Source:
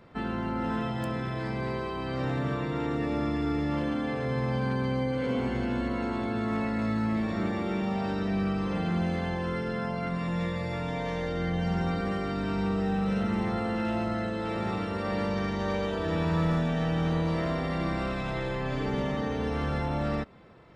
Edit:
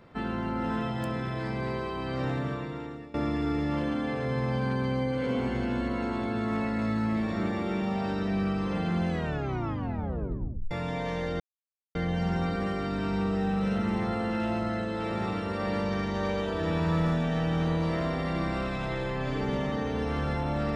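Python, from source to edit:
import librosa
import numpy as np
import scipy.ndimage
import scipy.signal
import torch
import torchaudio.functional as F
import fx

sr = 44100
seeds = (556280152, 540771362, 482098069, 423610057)

y = fx.edit(x, sr, fx.fade_out_to(start_s=2.28, length_s=0.86, floor_db=-21.0),
    fx.tape_stop(start_s=9.09, length_s=1.62),
    fx.insert_silence(at_s=11.4, length_s=0.55), tone=tone)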